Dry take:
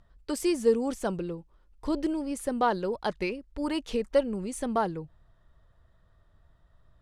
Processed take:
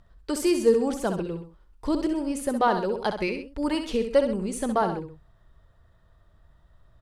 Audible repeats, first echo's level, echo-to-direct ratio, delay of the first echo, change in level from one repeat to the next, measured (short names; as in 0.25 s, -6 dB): 2, -8.0 dB, -7.0 dB, 65 ms, -6.5 dB